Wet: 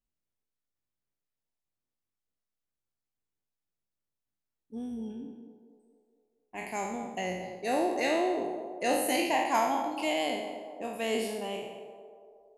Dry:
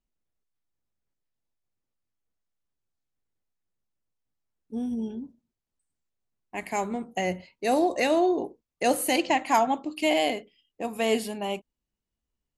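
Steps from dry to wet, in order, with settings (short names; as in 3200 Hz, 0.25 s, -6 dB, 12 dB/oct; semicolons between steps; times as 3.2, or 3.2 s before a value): spectral trails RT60 0.88 s; on a send: narrowing echo 0.231 s, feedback 61%, band-pass 560 Hz, level -9 dB; on the sum: gain -7.5 dB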